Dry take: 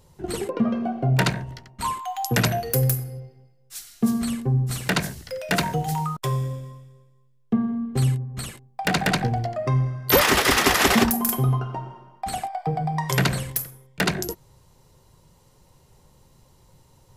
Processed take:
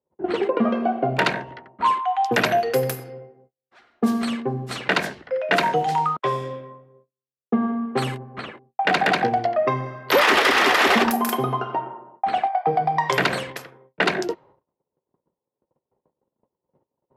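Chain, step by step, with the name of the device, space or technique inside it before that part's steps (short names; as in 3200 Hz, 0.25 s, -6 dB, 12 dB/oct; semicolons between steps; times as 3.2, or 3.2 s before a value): gate -51 dBFS, range -29 dB; HPF 53 Hz; low-pass opened by the level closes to 640 Hz, open at -19.5 dBFS; DJ mixer with the lows and highs turned down (three-band isolator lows -23 dB, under 260 Hz, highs -15 dB, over 4100 Hz; limiter -15.5 dBFS, peak gain reduction 8.5 dB); 7.62–8.39 bell 1100 Hz +5 dB 1.7 oct; gain +8 dB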